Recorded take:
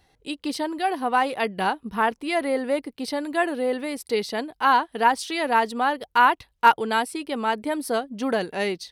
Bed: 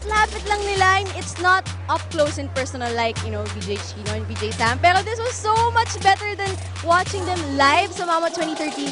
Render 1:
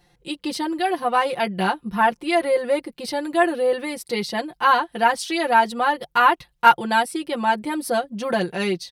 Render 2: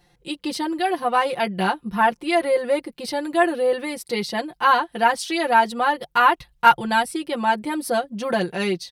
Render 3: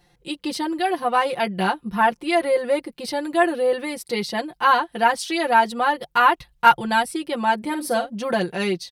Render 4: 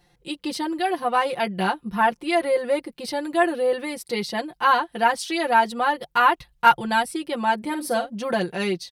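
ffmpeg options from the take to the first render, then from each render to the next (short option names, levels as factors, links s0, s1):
-af "equalizer=f=140:t=o:w=0.77:g=5.5,aecho=1:1:5.7:0.94"
-filter_complex "[0:a]asettb=1/sr,asplit=3[s0][s1][s2];[s0]atrim=end=6.084[s3];[s1]atrim=start=6.08:end=7.12,asetpts=PTS-STARTPTS,afade=t=in:d=0.004:c=qsin,afade=t=out:st=1.036:d=0.004:c=qsin,asubboost=boost=11:cutoff=150[s4];[s2]atrim=start=7.116[s5];[s3][s4]acrossfade=d=0.004:c1=hsin:c2=qsin[s6];[s6][s5]acrossfade=d=0.004:c1=qsin:c2=hsin"
-filter_complex "[0:a]asplit=3[s0][s1][s2];[s0]afade=t=out:st=7.61:d=0.02[s3];[s1]asplit=2[s4][s5];[s5]adelay=50,volume=0.316[s6];[s4][s6]amix=inputs=2:normalize=0,afade=t=in:st=7.61:d=0.02,afade=t=out:st=8.09:d=0.02[s7];[s2]afade=t=in:st=8.09:d=0.02[s8];[s3][s7][s8]amix=inputs=3:normalize=0"
-af "volume=0.841"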